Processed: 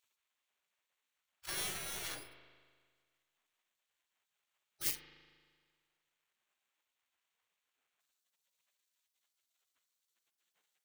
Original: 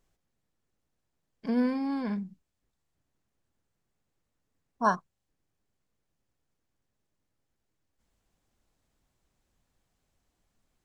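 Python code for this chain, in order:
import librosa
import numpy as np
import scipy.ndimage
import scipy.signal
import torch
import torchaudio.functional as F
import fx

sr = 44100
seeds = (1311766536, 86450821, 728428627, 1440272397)

y = fx.sample_hold(x, sr, seeds[0], rate_hz=5000.0, jitter_pct=0)
y = fx.spec_gate(y, sr, threshold_db=-30, keep='weak')
y = fx.rev_spring(y, sr, rt60_s=1.7, pass_ms=(38,), chirp_ms=30, drr_db=8.5)
y = y * librosa.db_to_amplitude(6.0)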